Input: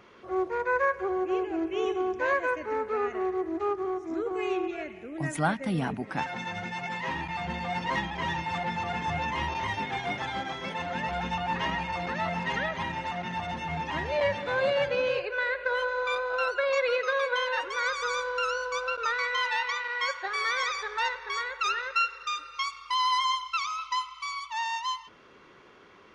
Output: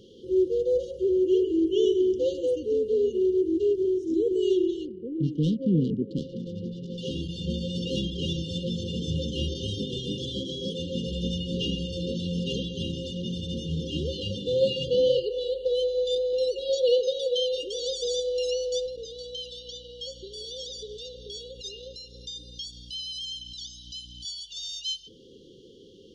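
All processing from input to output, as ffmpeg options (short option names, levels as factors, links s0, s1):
-filter_complex "[0:a]asettb=1/sr,asplit=3[s0][s1][s2];[s0]atrim=end=4.854[s3];[s1]atrim=start=4.85:end=6.98,asetpts=PTS-STARTPTS,afade=t=in:d=0.004:c=qsin,afade=t=out:st=2.126:d=0.004:c=qsin,highpass=100,lowpass=2300,adynamicsmooth=sensitivity=2:basefreq=1200[s4];[s2]atrim=start=6.976[s5];[s3][s4]acrossfade=d=0.004:c1=hsin:c2=qsin[s6];[s6][s5]acrossfade=d=0.004:c1=qsin:c2=hsin,asettb=1/sr,asplit=3[s7][s8][s9];[s7]atrim=end=18.864[s10];[s8]atrim=start=18.86:end=24.25,asetpts=PTS-STARTPTS,afade=t=in:d=0.004:c=qsin,afade=t=out:st=5.386:d=0.004:c=qsin,aeval=exprs='val(0)+0.00224*(sin(2*PI*60*n/s)+sin(2*PI*2*60*n/s)/2+sin(2*PI*3*60*n/s)/3+sin(2*PI*4*60*n/s)/4+sin(2*PI*5*60*n/s)/5)':c=same,acompressor=threshold=0.0112:ratio=2:attack=3.2:release=140:knee=1:detection=peak[s11];[s9]atrim=start=24.246[s12];[s10][s11]acrossfade=d=0.004:c1=hsin:c2=qsin[s13];[s13][s12]acrossfade=d=0.004:c1=qsin:c2=hsin,afftfilt=real='re*(1-between(b*sr/4096,540,2800))':imag='im*(1-between(b*sr/4096,540,2800))':win_size=4096:overlap=0.75,highshelf=f=8300:g=-4,volume=2.24"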